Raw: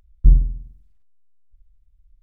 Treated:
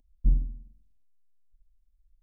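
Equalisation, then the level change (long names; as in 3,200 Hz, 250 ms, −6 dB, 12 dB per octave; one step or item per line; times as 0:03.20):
parametric band 300 Hz +9.5 dB 0.85 octaves
phaser with its sweep stopped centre 360 Hz, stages 6
−8.5 dB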